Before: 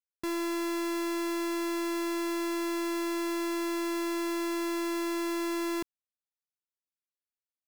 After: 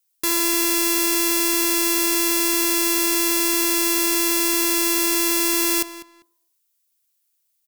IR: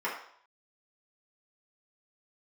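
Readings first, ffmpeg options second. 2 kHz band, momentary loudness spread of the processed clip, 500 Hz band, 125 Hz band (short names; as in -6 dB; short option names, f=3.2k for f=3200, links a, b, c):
+12.5 dB, 1 LU, +5.5 dB, n/a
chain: -filter_complex "[0:a]asplit=2[a][b];[b]adelay=198,lowpass=f=3.9k:p=1,volume=-13dB,asplit=2[c][d];[d]adelay=198,lowpass=f=3.9k:p=1,volume=0.21[e];[a][c][e]amix=inputs=3:normalize=0,asplit=2[f][g];[1:a]atrim=start_sample=2205,asetrate=33075,aresample=44100,lowpass=1k[h];[g][h]afir=irnorm=-1:irlink=0,volume=-24dB[i];[f][i]amix=inputs=2:normalize=0,crystalizer=i=9.5:c=0,volume=2.5dB"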